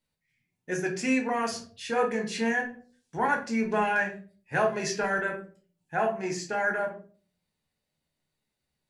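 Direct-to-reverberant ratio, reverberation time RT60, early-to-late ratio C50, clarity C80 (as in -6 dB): 1.0 dB, 0.45 s, 9.5 dB, 15.5 dB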